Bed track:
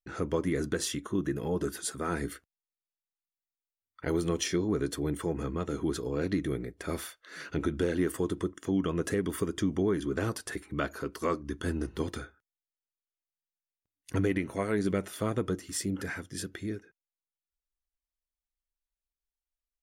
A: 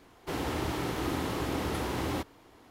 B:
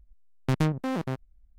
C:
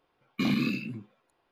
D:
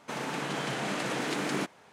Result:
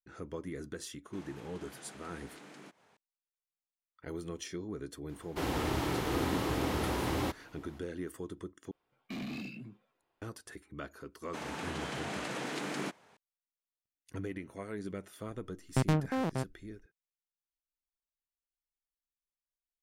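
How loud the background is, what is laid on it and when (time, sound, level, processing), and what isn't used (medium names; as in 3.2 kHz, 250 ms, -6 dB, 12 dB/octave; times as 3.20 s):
bed track -11.5 dB
1.05 s: add D -10 dB + compression 2:1, threshold -48 dBFS
5.09 s: add A -0.5 dB
8.71 s: replace with C -8 dB + saturation -28.5 dBFS
11.25 s: add D -6 dB
15.28 s: add B -3.5 dB + peaking EQ 690 Hz +3 dB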